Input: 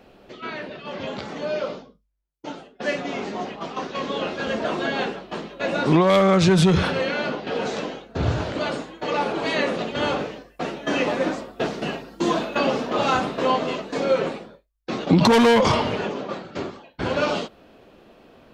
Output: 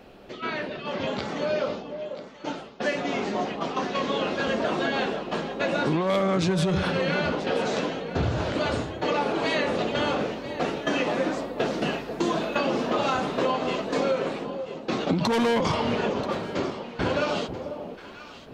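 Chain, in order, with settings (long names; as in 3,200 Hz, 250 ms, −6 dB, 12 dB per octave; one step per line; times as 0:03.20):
downward compressor 6 to 1, threshold −24 dBFS, peak gain reduction 12 dB
on a send: delay that swaps between a low-pass and a high-pass 492 ms, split 900 Hz, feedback 52%, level −8 dB
on the sum: level +2 dB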